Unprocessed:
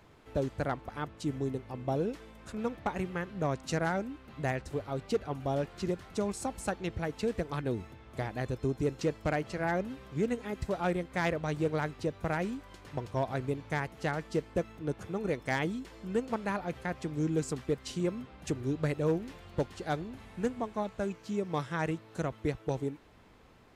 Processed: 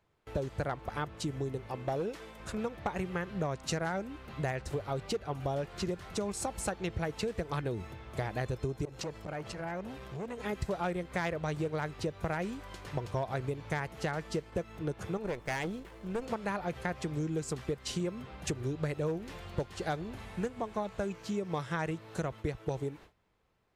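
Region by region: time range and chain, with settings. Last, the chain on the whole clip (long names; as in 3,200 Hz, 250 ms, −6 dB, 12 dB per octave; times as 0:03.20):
0:01.67–0:02.40: low-shelf EQ 170 Hz −8.5 dB + gain into a clipping stage and back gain 27 dB
0:08.85–0:10.40: downward compressor 4 to 1, threshold −38 dBFS + saturating transformer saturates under 770 Hz
0:15.17–0:16.22: running median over 9 samples + tube saturation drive 30 dB, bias 0.75
whole clip: downward compressor, threshold −35 dBFS; noise gate with hold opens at −46 dBFS; parametric band 260 Hz −7 dB 0.43 octaves; level +5.5 dB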